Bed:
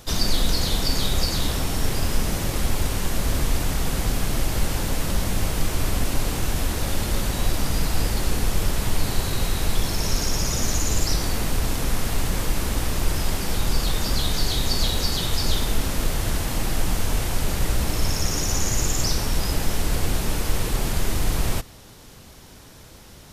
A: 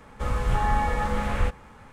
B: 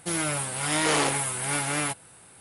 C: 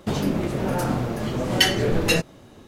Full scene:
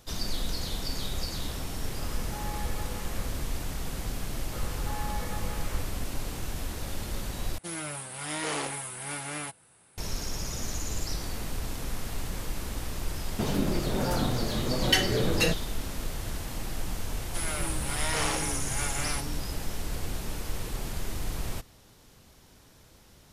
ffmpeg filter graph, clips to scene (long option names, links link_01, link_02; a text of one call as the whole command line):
ffmpeg -i bed.wav -i cue0.wav -i cue1.wav -i cue2.wav -filter_complex "[1:a]asplit=2[link_01][link_02];[2:a]asplit=2[link_03][link_04];[0:a]volume=-10.5dB[link_05];[link_04]acrossover=split=390[link_06][link_07];[link_06]adelay=230[link_08];[link_08][link_07]amix=inputs=2:normalize=0[link_09];[link_05]asplit=2[link_10][link_11];[link_10]atrim=end=7.584[link_12];[link_03]atrim=end=2.4,asetpts=PTS-STARTPTS,volume=-8.5dB[link_13];[link_11]atrim=start=9.976[link_14];[link_01]atrim=end=1.92,asetpts=PTS-STARTPTS,volume=-15dB,afade=type=in:duration=0.004:curve=hsin,afade=type=out:start_time=1.916:duration=0.004:curve=hsin,adelay=1780[link_15];[link_02]atrim=end=1.92,asetpts=PTS-STARTPTS,volume=-12.5dB,afade=type=in:duration=0.004:curve=hsin,afade=type=out:start_time=1.916:duration=0.004:curve=hsin,adelay=4320[link_16];[3:a]atrim=end=2.67,asetpts=PTS-STARTPTS,volume=-5dB,afade=type=in:duration=0.004:curve=hsin,afade=type=out:start_time=2.666:duration=0.004:curve=hsin,adelay=587412S[link_17];[link_09]atrim=end=2.4,asetpts=PTS-STARTPTS,volume=-5.5dB,afade=type=in:duration=0.004:curve=hsin,afade=type=out:start_time=2.396:duration=0.004:curve=hsin,adelay=17280[link_18];[link_12][link_13]acrossfade=duration=0.004:curve1=hsin:curve2=hsin[link_19];[link_19][link_14]acrossfade=duration=0.004:curve1=hsin:curve2=hsin[link_20];[link_20][link_15][link_16][link_17][link_18]amix=inputs=5:normalize=0" out.wav